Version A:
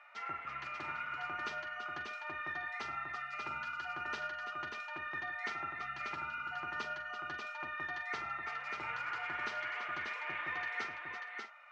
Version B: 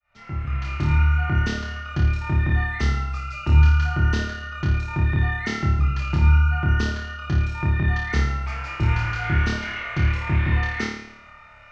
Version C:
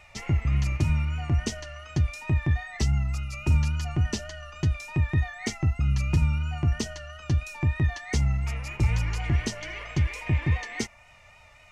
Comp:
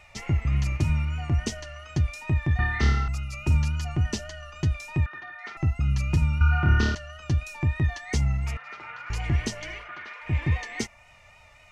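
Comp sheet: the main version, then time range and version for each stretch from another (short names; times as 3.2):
C
2.59–3.08 from B
5.06–5.57 from A
6.41–6.95 from B
8.57–9.1 from A
9.82–10.28 from A, crossfade 0.16 s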